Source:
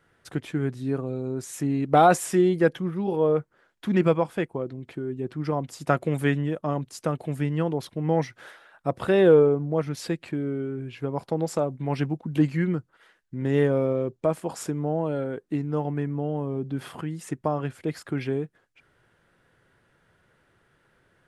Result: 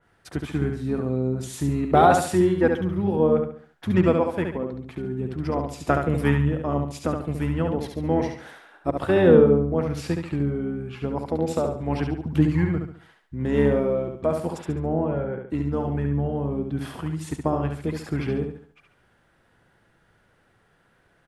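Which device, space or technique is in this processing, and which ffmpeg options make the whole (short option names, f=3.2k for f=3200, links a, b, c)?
octave pedal: -filter_complex "[0:a]asplit=2[a][b];[b]asetrate=22050,aresample=44100,atempo=2,volume=-7dB[c];[a][c]amix=inputs=2:normalize=0,asplit=3[d][e][f];[d]afade=t=out:st=14.57:d=0.02[g];[e]lowpass=f=2.7k:w=0.5412,lowpass=f=2.7k:w=1.3066,afade=t=in:st=14.57:d=0.02,afade=t=out:st=15.47:d=0.02[h];[f]afade=t=in:st=15.47:d=0.02[i];[g][h][i]amix=inputs=3:normalize=0,aecho=1:1:70|140|210|280|350:0.562|0.208|0.077|0.0285|0.0105,adynamicequalizer=threshold=0.00794:dfrequency=3000:dqfactor=0.7:tfrequency=3000:tqfactor=0.7:attack=5:release=100:ratio=0.375:range=3:mode=cutabove:tftype=highshelf"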